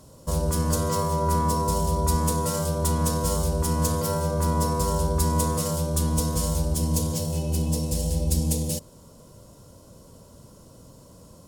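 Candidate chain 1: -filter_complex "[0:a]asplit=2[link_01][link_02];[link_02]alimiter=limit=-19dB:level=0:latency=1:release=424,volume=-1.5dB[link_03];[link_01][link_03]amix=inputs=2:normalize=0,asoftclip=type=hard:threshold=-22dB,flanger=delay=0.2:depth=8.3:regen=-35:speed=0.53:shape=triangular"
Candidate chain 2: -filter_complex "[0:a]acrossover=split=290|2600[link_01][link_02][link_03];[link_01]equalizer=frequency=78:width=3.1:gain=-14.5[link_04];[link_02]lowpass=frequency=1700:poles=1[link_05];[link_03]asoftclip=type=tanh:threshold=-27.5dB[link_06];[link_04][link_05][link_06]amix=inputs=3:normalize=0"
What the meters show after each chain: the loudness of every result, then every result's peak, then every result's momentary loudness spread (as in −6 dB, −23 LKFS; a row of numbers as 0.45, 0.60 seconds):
−29.0, −27.5 LKFS; −22.0, −14.0 dBFS; 20, 3 LU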